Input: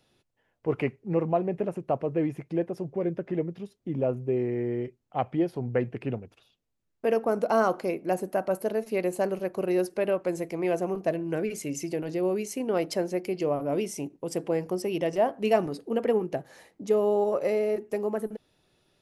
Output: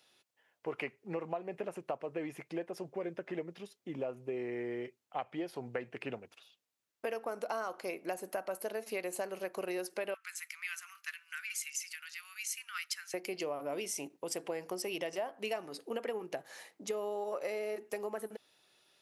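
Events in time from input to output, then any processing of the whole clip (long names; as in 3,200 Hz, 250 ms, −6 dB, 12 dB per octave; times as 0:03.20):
0:10.14–0:13.14: Chebyshev high-pass filter 1,300 Hz, order 5
whole clip: high-pass filter 1,300 Hz 6 dB per octave; downward compressor 6 to 1, threshold −38 dBFS; level +4 dB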